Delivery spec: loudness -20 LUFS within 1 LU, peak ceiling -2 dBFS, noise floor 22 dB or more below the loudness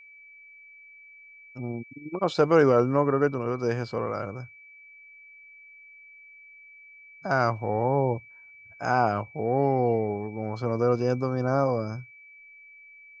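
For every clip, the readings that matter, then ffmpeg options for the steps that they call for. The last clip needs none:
steady tone 2300 Hz; tone level -48 dBFS; loudness -26.0 LUFS; peak -9.0 dBFS; loudness target -20.0 LUFS
-> -af "bandreject=f=2.3k:w=30"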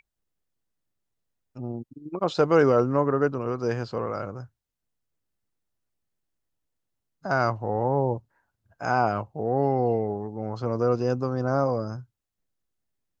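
steady tone none; loudness -26.0 LUFS; peak -9.0 dBFS; loudness target -20.0 LUFS
-> -af "volume=6dB"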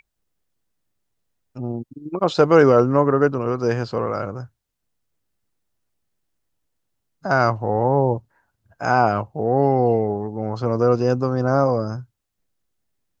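loudness -20.0 LUFS; peak -3.0 dBFS; noise floor -78 dBFS

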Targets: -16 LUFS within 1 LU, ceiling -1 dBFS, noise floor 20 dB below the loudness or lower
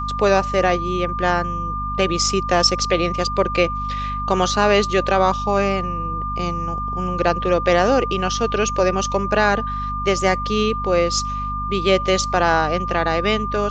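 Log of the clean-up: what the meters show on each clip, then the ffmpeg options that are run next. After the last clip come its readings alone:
hum 50 Hz; harmonics up to 250 Hz; hum level -26 dBFS; steady tone 1200 Hz; tone level -24 dBFS; loudness -19.5 LUFS; peak -2.0 dBFS; loudness target -16.0 LUFS
-> -af "bandreject=f=50:t=h:w=6,bandreject=f=100:t=h:w=6,bandreject=f=150:t=h:w=6,bandreject=f=200:t=h:w=6,bandreject=f=250:t=h:w=6"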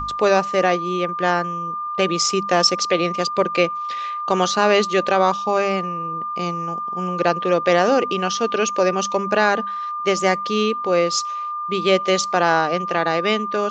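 hum none; steady tone 1200 Hz; tone level -24 dBFS
-> -af "bandreject=f=1.2k:w=30"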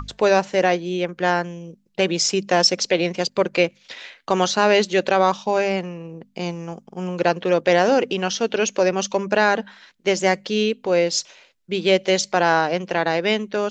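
steady tone none; loudness -20.5 LUFS; peak -3.5 dBFS; loudness target -16.0 LUFS
-> -af "volume=4.5dB,alimiter=limit=-1dB:level=0:latency=1"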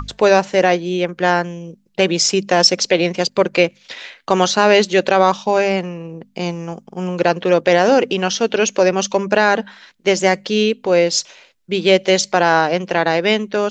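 loudness -16.0 LUFS; peak -1.0 dBFS; noise floor -56 dBFS

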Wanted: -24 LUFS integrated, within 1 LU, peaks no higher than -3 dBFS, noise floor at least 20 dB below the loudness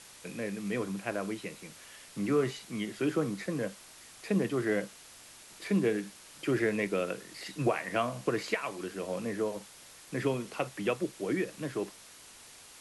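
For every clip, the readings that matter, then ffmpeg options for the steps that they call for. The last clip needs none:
noise floor -53 dBFS; noise floor target -54 dBFS; loudness -33.5 LUFS; peak -16.0 dBFS; loudness target -24.0 LUFS
-> -af "afftdn=nr=6:nf=-53"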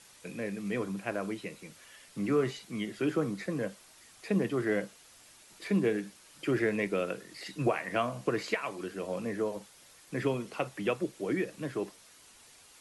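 noise floor -57 dBFS; loudness -33.5 LUFS; peak -16.0 dBFS; loudness target -24.0 LUFS
-> -af "volume=9.5dB"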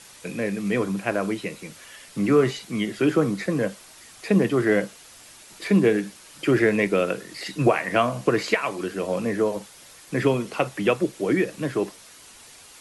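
loudness -24.0 LUFS; peak -6.5 dBFS; noise floor -48 dBFS

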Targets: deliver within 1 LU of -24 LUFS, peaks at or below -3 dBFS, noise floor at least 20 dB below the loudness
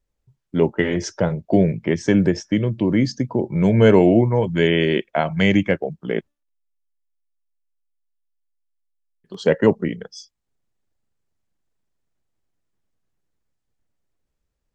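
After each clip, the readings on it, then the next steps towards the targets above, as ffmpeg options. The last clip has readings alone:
loudness -19.0 LUFS; peak -2.5 dBFS; loudness target -24.0 LUFS
-> -af "volume=-5dB"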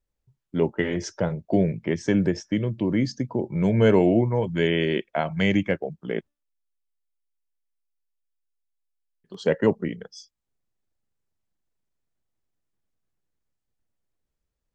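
loudness -24.0 LUFS; peak -7.5 dBFS; noise floor -82 dBFS

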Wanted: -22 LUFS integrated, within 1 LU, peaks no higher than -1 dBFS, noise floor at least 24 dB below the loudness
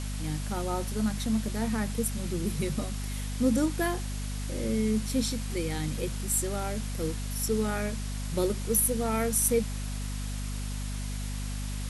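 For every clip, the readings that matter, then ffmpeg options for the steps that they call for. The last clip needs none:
hum 50 Hz; harmonics up to 250 Hz; hum level -31 dBFS; noise floor -34 dBFS; noise floor target -54 dBFS; loudness -30.0 LUFS; peak -10.0 dBFS; loudness target -22.0 LUFS
-> -af "bandreject=f=50:t=h:w=6,bandreject=f=100:t=h:w=6,bandreject=f=150:t=h:w=6,bandreject=f=200:t=h:w=6,bandreject=f=250:t=h:w=6"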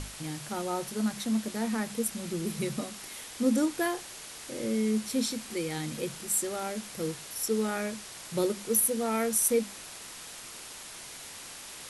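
hum none; noise floor -45 dBFS; noise floor target -55 dBFS
-> -af "afftdn=nr=10:nf=-45"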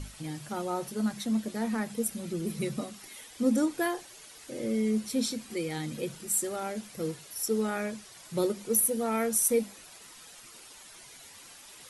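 noise floor -51 dBFS; noise floor target -55 dBFS
-> -af "afftdn=nr=6:nf=-51"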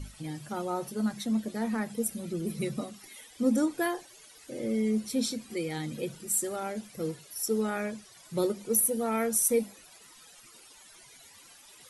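noise floor -54 dBFS; noise floor target -55 dBFS
-> -af "afftdn=nr=6:nf=-54"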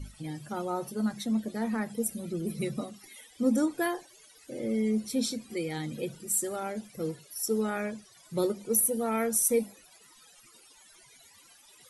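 noise floor -58 dBFS; loudness -30.5 LUFS; peak -10.5 dBFS; loudness target -22.0 LUFS
-> -af "volume=8.5dB"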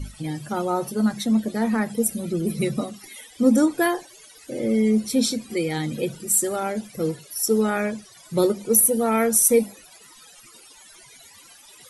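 loudness -22.0 LUFS; peak -2.0 dBFS; noise floor -49 dBFS

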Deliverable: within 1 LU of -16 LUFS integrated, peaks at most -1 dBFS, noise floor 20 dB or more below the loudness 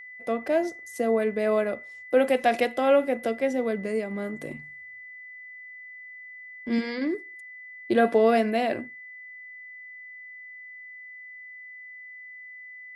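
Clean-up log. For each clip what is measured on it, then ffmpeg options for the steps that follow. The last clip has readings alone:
steady tone 2000 Hz; tone level -41 dBFS; loudness -25.5 LUFS; peak -9.0 dBFS; loudness target -16.0 LUFS
-> -af "bandreject=f=2k:w=30"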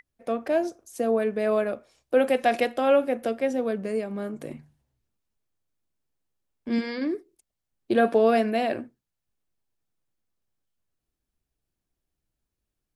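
steady tone none; loudness -25.5 LUFS; peak -9.0 dBFS; loudness target -16.0 LUFS
-> -af "volume=9.5dB,alimiter=limit=-1dB:level=0:latency=1"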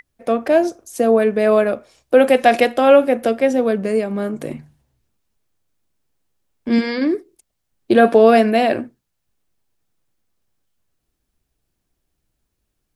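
loudness -16.0 LUFS; peak -1.0 dBFS; noise floor -75 dBFS

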